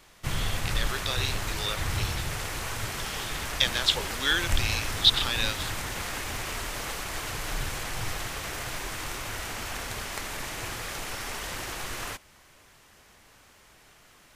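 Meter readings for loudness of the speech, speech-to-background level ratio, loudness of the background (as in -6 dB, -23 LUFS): -27.5 LUFS, 5.5 dB, -33.0 LUFS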